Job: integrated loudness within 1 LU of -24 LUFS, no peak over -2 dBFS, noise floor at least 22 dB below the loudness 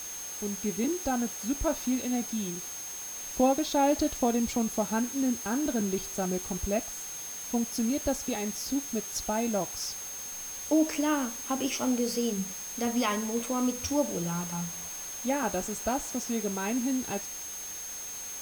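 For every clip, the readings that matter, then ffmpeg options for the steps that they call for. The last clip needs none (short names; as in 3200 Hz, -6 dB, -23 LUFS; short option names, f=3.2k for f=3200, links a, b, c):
steady tone 6400 Hz; tone level -38 dBFS; noise floor -39 dBFS; noise floor target -53 dBFS; loudness -30.5 LUFS; peak -14.5 dBFS; loudness target -24.0 LUFS
-> -af "bandreject=f=6.4k:w=30"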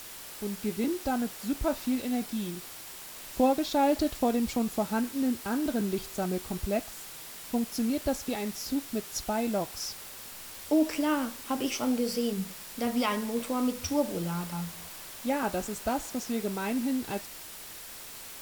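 steady tone none; noise floor -44 dBFS; noise floor target -53 dBFS
-> -af "afftdn=nr=9:nf=-44"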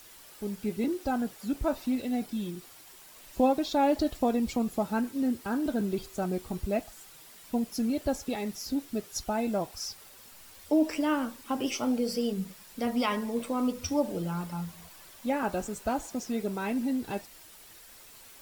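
noise floor -52 dBFS; noise floor target -53 dBFS
-> -af "afftdn=nr=6:nf=-52"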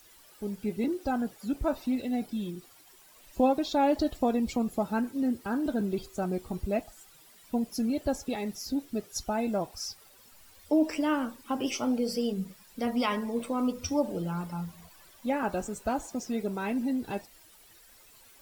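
noise floor -57 dBFS; loudness -31.0 LUFS; peak -15.5 dBFS; loudness target -24.0 LUFS
-> -af "volume=7dB"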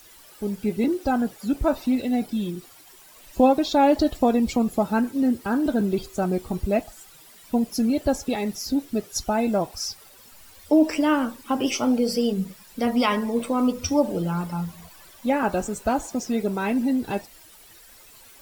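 loudness -24.0 LUFS; peak -8.5 dBFS; noise floor -50 dBFS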